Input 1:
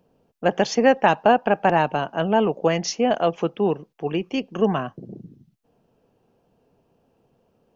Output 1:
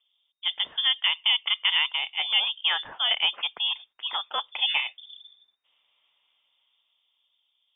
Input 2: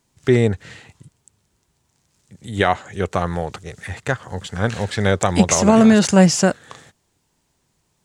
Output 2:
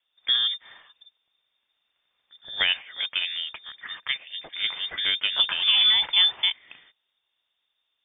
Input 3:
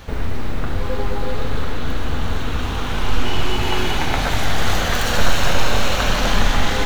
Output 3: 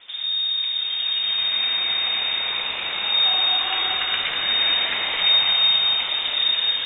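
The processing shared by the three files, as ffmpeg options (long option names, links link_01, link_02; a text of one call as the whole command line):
ffmpeg -i in.wav -filter_complex "[0:a]acrossover=split=130|900[link_01][link_02][link_03];[link_03]dynaudnorm=framelen=140:gausssize=21:maxgain=15.5dB[link_04];[link_01][link_02][link_04]amix=inputs=3:normalize=0,lowpass=frequency=3100:width_type=q:width=0.5098,lowpass=frequency=3100:width_type=q:width=0.6013,lowpass=frequency=3100:width_type=q:width=0.9,lowpass=frequency=3100:width_type=q:width=2.563,afreqshift=-3700,volume=-8.5dB" out.wav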